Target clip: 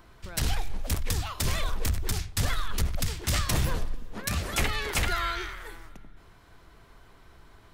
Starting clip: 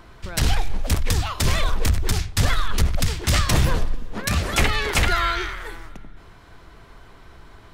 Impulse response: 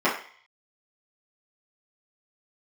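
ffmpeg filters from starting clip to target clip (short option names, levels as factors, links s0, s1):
-af "highshelf=f=9500:g=8.5,volume=0.398"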